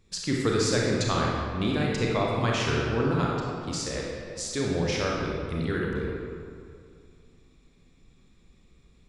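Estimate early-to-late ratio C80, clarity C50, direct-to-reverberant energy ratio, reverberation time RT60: 1.0 dB, -1.0 dB, -3.0 dB, 2.3 s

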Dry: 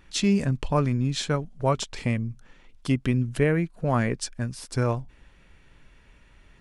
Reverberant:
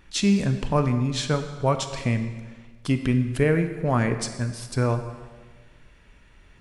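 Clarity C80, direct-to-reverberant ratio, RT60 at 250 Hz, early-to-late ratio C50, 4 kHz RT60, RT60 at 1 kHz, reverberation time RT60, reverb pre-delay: 10.5 dB, 8.0 dB, 1.5 s, 9.5 dB, 1.2 s, 1.4 s, 1.4 s, 24 ms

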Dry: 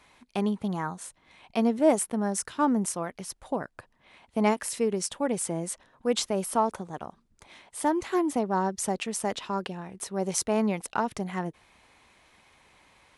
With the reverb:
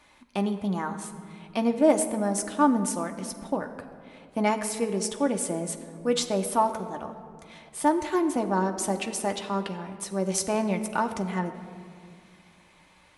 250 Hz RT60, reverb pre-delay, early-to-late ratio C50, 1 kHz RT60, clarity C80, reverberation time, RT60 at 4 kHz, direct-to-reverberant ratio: 2.6 s, 3 ms, 10.5 dB, 2.1 s, 11.0 dB, 2.2 s, 1.2 s, 4.5 dB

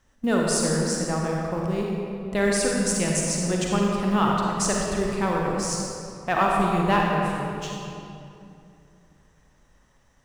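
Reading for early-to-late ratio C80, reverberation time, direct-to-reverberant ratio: 0.0 dB, 2.7 s, -2.0 dB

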